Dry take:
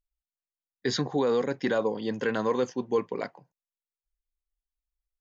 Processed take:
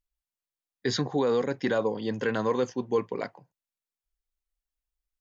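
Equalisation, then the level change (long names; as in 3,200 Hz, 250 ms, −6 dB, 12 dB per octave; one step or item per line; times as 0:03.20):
parametric band 110 Hz +5 dB 0.36 octaves
0.0 dB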